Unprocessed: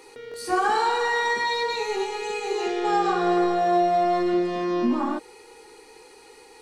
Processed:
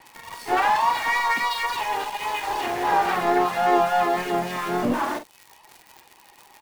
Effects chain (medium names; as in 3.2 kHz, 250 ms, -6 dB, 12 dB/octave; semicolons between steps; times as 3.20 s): comb filter that takes the minimum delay 1.1 ms; reverb removal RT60 0.92 s; three-band isolator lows -20 dB, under 160 Hz, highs -15 dB, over 3 kHz; vibrato 3.6 Hz 33 cents; crackle 92 per s -41 dBFS; treble shelf 2.2 kHz +3.5 dB; in parallel at -8 dB: companded quantiser 2-bit; on the sum: harmony voices -5 st -14 dB, +3 st -7 dB, +4 st -16 dB; doubling 45 ms -10 dB